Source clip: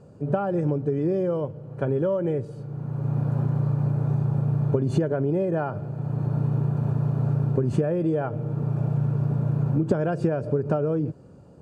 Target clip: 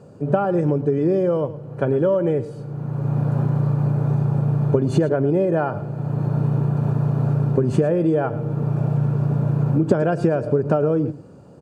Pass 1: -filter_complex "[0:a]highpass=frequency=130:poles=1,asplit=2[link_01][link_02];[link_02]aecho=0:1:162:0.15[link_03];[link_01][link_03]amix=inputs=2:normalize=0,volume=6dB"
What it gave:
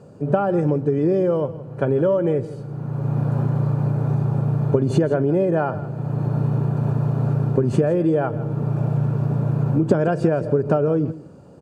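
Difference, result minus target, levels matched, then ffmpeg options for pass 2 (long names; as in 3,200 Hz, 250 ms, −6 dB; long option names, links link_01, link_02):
echo 53 ms late
-filter_complex "[0:a]highpass=frequency=130:poles=1,asplit=2[link_01][link_02];[link_02]aecho=0:1:109:0.15[link_03];[link_01][link_03]amix=inputs=2:normalize=0,volume=6dB"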